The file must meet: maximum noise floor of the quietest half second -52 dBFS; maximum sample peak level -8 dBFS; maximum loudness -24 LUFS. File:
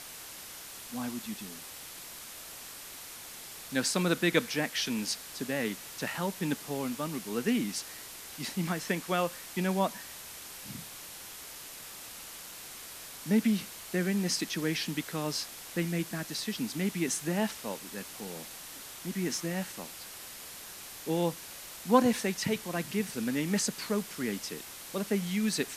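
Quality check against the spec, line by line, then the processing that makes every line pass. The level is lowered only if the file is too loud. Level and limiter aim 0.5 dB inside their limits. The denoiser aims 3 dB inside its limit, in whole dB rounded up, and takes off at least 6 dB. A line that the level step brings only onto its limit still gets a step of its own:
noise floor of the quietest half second -46 dBFS: fail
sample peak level -9.5 dBFS: OK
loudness -33.5 LUFS: OK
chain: denoiser 9 dB, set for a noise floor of -46 dBFS

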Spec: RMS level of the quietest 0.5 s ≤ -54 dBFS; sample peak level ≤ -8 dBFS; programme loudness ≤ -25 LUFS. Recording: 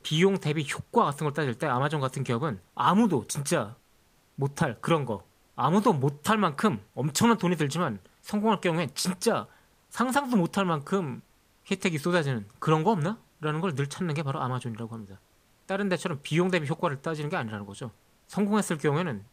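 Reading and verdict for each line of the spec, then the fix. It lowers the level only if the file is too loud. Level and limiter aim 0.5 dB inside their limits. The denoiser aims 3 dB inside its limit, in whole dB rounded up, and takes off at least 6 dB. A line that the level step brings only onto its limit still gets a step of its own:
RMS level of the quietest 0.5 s -63 dBFS: OK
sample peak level -9.0 dBFS: OK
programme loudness -27.5 LUFS: OK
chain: none

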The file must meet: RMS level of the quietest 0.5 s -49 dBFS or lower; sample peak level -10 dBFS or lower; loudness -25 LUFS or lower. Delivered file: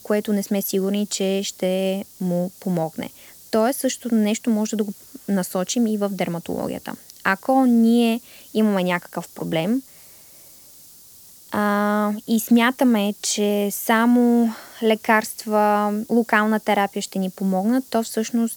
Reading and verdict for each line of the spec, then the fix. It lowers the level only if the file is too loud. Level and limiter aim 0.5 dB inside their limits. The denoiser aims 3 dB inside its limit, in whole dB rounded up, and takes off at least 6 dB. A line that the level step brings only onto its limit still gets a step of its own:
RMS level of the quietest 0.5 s -46 dBFS: fail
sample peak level -2.0 dBFS: fail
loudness -21.0 LUFS: fail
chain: gain -4.5 dB; limiter -10.5 dBFS

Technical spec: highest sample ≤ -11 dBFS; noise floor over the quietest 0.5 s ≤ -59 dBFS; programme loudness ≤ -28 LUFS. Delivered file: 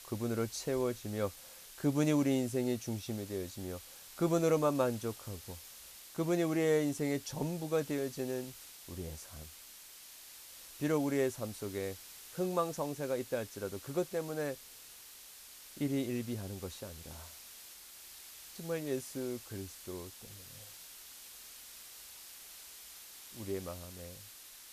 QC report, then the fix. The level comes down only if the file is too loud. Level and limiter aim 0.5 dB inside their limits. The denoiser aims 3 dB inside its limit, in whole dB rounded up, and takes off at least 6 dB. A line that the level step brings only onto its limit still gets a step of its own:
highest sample -17.0 dBFS: OK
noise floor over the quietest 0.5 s -53 dBFS: fail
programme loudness -36.0 LUFS: OK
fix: denoiser 9 dB, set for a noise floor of -53 dBFS

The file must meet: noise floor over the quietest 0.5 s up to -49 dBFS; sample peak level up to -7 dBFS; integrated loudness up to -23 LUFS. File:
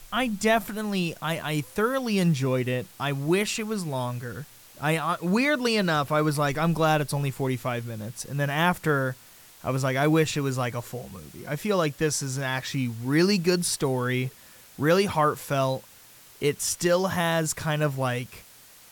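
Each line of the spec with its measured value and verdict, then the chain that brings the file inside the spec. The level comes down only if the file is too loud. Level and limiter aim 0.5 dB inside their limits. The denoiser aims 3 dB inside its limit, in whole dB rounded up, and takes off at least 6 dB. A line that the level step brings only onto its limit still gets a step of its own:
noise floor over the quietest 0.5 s -51 dBFS: OK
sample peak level -8.5 dBFS: OK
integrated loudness -26.0 LUFS: OK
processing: none

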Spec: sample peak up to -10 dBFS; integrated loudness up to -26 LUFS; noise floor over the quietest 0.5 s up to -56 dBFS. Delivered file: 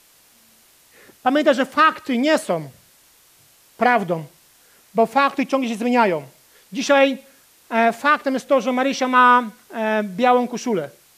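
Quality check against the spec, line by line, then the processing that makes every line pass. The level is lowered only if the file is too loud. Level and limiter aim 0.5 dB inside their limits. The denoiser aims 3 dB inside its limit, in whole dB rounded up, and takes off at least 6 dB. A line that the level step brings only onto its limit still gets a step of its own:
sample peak -3.5 dBFS: fail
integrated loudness -19.0 LUFS: fail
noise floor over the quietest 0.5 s -54 dBFS: fail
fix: gain -7.5 dB

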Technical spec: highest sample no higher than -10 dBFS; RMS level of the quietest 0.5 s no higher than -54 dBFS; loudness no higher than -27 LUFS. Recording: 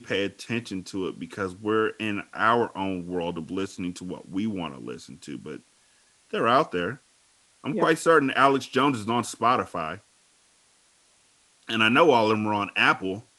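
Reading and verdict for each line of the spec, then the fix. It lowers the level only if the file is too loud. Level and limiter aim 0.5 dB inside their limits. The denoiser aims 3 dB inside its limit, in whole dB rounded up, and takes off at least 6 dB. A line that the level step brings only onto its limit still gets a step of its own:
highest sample -3.0 dBFS: fail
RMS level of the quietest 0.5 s -62 dBFS: OK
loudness -25.0 LUFS: fail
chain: gain -2.5 dB; limiter -10.5 dBFS

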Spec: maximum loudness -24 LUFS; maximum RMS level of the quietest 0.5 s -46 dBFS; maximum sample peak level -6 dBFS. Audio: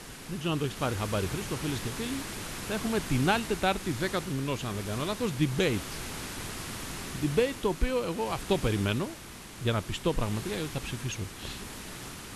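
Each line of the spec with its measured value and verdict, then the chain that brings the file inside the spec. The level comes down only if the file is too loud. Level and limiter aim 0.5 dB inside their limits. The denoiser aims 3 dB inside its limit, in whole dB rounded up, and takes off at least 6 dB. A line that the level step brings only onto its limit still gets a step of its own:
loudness -31.5 LUFS: OK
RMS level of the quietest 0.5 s -45 dBFS: fail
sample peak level -12.0 dBFS: OK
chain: denoiser 6 dB, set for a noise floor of -45 dBFS

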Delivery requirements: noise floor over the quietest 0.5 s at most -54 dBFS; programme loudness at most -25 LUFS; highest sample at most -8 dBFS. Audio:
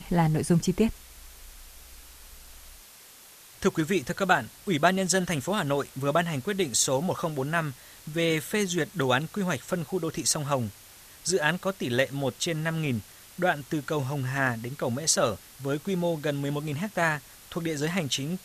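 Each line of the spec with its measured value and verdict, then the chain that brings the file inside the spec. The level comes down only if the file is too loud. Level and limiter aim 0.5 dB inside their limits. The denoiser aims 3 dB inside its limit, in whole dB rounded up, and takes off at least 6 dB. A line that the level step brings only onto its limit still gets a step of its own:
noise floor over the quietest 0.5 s -51 dBFS: fail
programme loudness -27.5 LUFS: OK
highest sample -6.0 dBFS: fail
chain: denoiser 6 dB, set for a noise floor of -51 dBFS; limiter -8.5 dBFS

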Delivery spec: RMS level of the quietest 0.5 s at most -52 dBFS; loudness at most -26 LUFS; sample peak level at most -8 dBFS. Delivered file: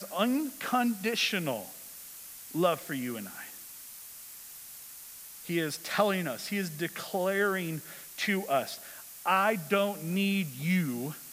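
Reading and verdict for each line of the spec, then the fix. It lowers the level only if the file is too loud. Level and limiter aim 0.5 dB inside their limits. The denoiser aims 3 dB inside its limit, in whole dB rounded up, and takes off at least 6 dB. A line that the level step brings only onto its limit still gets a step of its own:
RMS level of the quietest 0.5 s -47 dBFS: fail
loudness -30.5 LUFS: OK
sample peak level -11.5 dBFS: OK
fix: denoiser 8 dB, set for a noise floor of -47 dBFS

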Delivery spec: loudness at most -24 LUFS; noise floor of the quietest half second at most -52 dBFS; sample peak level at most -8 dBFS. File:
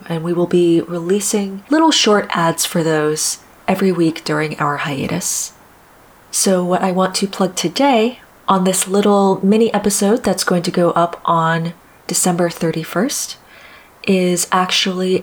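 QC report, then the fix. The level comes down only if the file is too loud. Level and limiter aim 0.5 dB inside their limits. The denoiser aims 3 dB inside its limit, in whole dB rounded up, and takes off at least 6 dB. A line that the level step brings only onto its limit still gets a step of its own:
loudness -16.0 LUFS: fail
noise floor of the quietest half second -46 dBFS: fail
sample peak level -3.5 dBFS: fail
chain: gain -8.5 dB

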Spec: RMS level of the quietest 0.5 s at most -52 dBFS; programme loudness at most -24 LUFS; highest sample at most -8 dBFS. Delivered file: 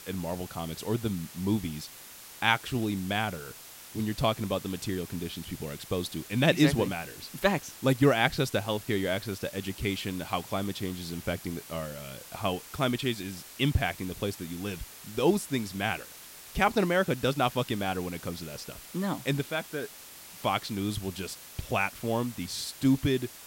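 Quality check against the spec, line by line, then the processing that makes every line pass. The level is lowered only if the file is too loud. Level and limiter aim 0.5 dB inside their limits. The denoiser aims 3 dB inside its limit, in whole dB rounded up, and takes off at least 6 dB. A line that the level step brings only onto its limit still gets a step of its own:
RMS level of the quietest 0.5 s -48 dBFS: fail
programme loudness -30.5 LUFS: OK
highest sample -7.0 dBFS: fail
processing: denoiser 7 dB, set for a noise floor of -48 dBFS; limiter -8.5 dBFS

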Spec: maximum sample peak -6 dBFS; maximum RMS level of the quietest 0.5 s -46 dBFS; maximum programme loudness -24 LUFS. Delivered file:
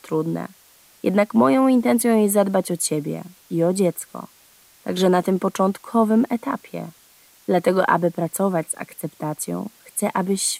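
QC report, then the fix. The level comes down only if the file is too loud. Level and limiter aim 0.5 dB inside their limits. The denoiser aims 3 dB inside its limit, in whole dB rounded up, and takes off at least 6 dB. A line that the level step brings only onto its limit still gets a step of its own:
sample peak -4.0 dBFS: fail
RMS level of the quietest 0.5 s -53 dBFS: OK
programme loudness -21.0 LUFS: fail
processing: gain -3.5 dB

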